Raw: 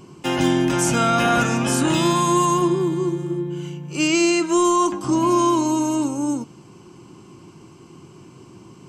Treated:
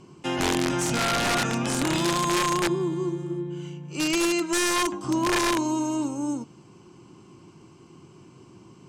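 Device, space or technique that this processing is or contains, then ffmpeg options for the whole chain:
overflowing digital effects unit: -af "aeval=exprs='(mod(3.55*val(0)+1,2)-1)/3.55':channel_layout=same,lowpass=9200,volume=-5.5dB"

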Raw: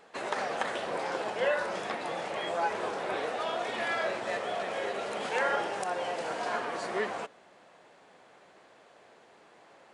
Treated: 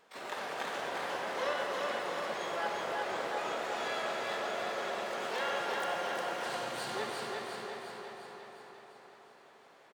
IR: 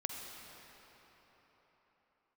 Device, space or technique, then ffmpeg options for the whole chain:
shimmer-style reverb: -filter_complex "[0:a]asettb=1/sr,asplit=3[link_01][link_02][link_03];[link_01]atrim=end=6.454[link_04];[link_02]atrim=start=6.45:end=6.95,asetpts=PTS-STARTPTS,afade=type=in:duration=0.004:curve=qsin,afade=type=out:start_time=0.496:duration=0.004:curve=qsin,equalizer=frequency=125:width_type=o:width=1:gain=11,equalizer=frequency=500:width_type=o:width=1:gain=-11,equalizer=frequency=1000:width_type=o:width=1:gain=-6,equalizer=frequency=2000:width_type=o:width=1:gain=-3,equalizer=frequency=4000:width_type=o:width=1:gain=12[link_05];[link_03]atrim=start=6.946[link_06];[link_04][link_05]acrossfade=duration=0.004:curve1=hsin:curve2=qsin[link_07];[link_07][link_06]acrossfade=duration=0.004:curve1=qsin:curve2=hsin,asplit=2[link_08][link_09];[link_09]asetrate=88200,aresample=44100,atempo=0.5,volume=-5dB[link_10];[link_08][link_10]amix=inputs=2:normalize=0[link_11];[1:a]atrim=start_sample=2205[link_12];[link_11][link_12]afir=irnorm=-1:irlink=0,aecho=1:1:354|708|1062|1416|1770|2124|2478|2832:0.668|0.381|0.217|0.124|0.0706|0.0402|0.0229|0.0131,volume=-7.5dB"

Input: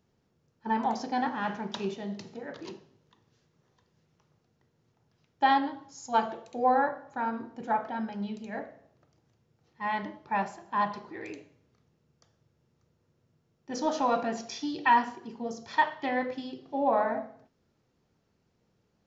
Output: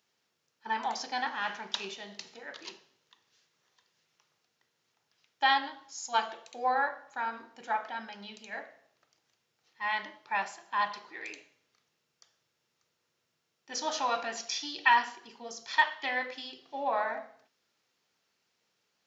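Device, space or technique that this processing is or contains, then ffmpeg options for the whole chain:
filter by subtraction: -filter_complex "[0:a]asplit=2[link_01][link_02];[link_02]lowpass=3000,volume=-1[link_03];[link_01][link_03]amix=inputs=2:normalize=0,volume=4.5dB"

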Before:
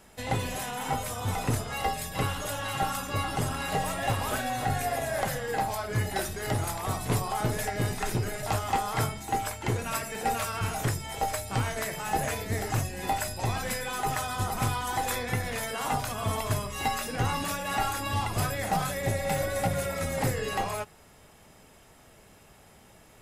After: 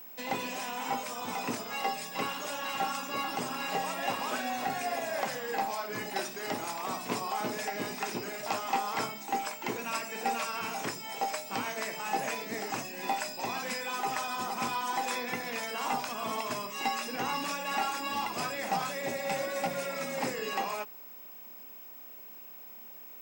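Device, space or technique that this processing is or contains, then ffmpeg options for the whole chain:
old television with a line whistle: -af "highpass=frequency=200:width=0.5412,highpass=frequency=200:width=1.3066,equalizer=frequency=240:width_type=q:width=4:gain=3,equalizer=frequency=1000:width_type=q:width=4:gain=5,equalizer=frequency=2500:width_type=q:width=4:gain=6,equalizer=frequency=5300:width_type=q:width=4:gain=6,lowpass=frequency=8700:width=0.5412,lowpass=frequency=8700:width=1.3066,aeval=exprs='val(0)+0.00891*sin(2*PI*15734*n/s)':channel_layout=same,volume=-4dB"

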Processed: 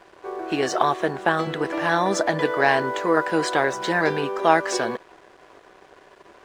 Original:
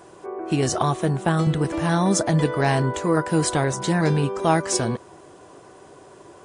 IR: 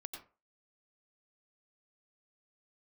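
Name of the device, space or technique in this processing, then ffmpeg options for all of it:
pocket radio on a weak battery: -af "highpass=390,lowpass=4200,aeval=exprs='sgn(val(0))*max(abs(val(0))-0.00266,0)':channel_layout=same,equalizer=frequency=1700:width_type=o:width=0.3:gain=5,volume=3.5dB"

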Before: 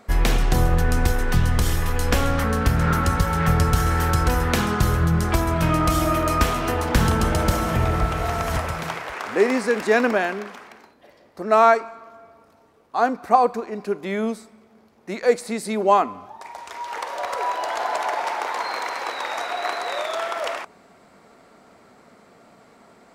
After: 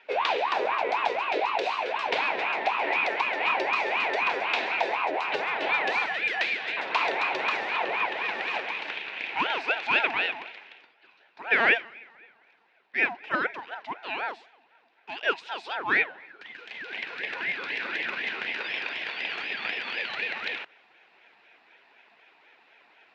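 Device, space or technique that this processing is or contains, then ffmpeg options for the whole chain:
voice changer toy: -filter_complex "[0:a]asettb=1/sr,asplit=3[link_01][link_02][link_03];[link_01]atrim=end=6.064[link_04];[link_02]atrim=start=6.06:end=6.77,asetpts=PTS-STARTPTS,afade=type=in:duration=0.004:curve=qsin,afade=type=out:start_time=0.706:duration=0.004:curve=qsin,highpass=660[link_05];[link_03]atrim=start=6.766[link_06];[link_04][link_05]acrossfade=duration=0.004:curve1=hsin:curve2=qsin[link_07];[link_07][link_06]acrossfade=duration=0.004:curve1=qsin:curve2=hsin,aeval=exprs='val(0)*sin(2*PI*810*n/s+810*0.45/4*sin(2*PI*4*n/s))':channel_layout=same,highpass=540,equalizer=frequency=570:width_type=q:width=4:gain=-5,equalizer=frequency=1200:width_type=q:width=4:gain=-10,equalizer=frequency=2500:width_type=q:width=4:gain=9,equalizer=frequency=3800:width_type=q:width=4:gain=4,lowpass=frequency=4200:width=0.5412,lowpass=frequency=4200:width=1.3066,volume=-2dB"

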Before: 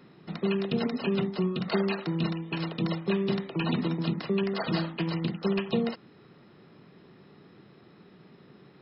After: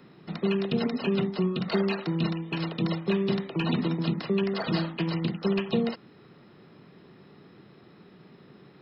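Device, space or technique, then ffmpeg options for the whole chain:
one-band saturation: -filter_complex "[0:a]acrossover=split=550|2300[link_01][link_02][link_03];[link_02]asoftclip=type=tanh:threshold=-31dB[link_04];[link_01][link_04][link_03]amix=inputs=3:normalize=0,volume=1.5dB"

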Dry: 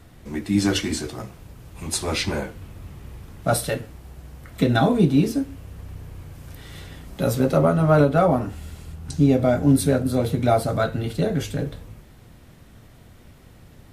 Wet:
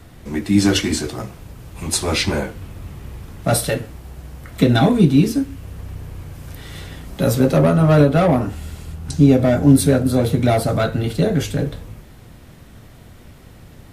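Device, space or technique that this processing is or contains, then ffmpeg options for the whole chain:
one-band saturation: -filter_complex "[0:a]acrossover=split=440|2200[link_01][link_02][link_03];[link_02]asoftclip=type=tanh:threshold=-22dB[link_04];[link_01][link_04][link_03]amix=inputs=3:normalize=0,asettb=1/sr,asplit=3[link_05][link_06][link_07];[link_05]atrim=end=4.894[link_08];[link_06]atrim=start=4.89:end=5.63,asetpts=PTS-STARTPTS,afade=type=in:duration=0.004:curve=qsin,afade=type=out:start_time=0.736:duration=0.004:curve=qsin,equalizer=frequency=600:width=1.2:gain=-5.5[link_09];[link_07]atrim=start=5.626[link_10];[link_08][link_09]acrossfade=duration=0.004:curve1=hsin:curve2=qsin[link_11];[link_11][link_10]acrossfade=duration=0.004:curve1=qsin:curve2=hsin,volume=5.5dB"

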